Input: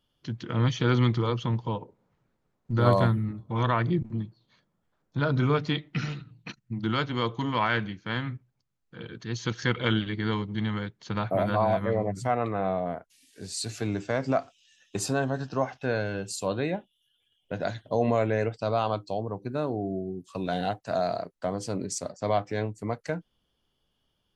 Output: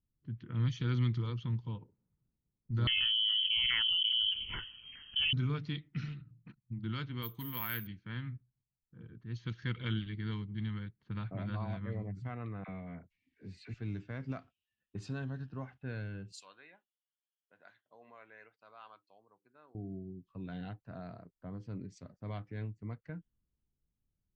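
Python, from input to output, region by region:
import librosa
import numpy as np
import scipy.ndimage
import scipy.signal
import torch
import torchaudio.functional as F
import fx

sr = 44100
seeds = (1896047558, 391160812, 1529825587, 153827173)

y = fx.chain(x, sr, fx.filter_lfo_notch(shape='saw_up', hz=2.4, low_hz=650.0, high_hz=1800.0, q=1.0),
    fx.freq_invert(carrier_hz=3200),
    fx.env_flatten(amount_pct=100), at=(2.87, 5.33))
y = fx.chain(y, sr, fx.low_shelf(hz=190.0, db=-6.0),
    fx.resample_bad(factor=3, down='filtered', up='zero_stuff'), at=(7.22, 7.87))
y = fx.chain(y, sr, fx.peak_eq(hz=2200.0, db=12.0, octaves=0.38),
    fx.dispersion(late='lows', ms=42.0, hz=750.0),
    fx.band_squash(depth_pct=40), at=(12.64, 13.74))
y = fx.chain(y, sr, fx.highpass(hz=1100.0, slope=12),
    fx.high_shelf(hz=5400.0, db=9.5), at=(16.32, 19.75))
y = fx.tone_stack(y, sr, knobs='6-0-2')
y = fx.env_lowpass(y, sr, base_hz=790.0, full_db=-37.5)
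y = fx.high_shelf(y, sr, hz=4900.0, db=-11.0)
y = F.gain(torch.from_numpy(y), 8.0).numpy()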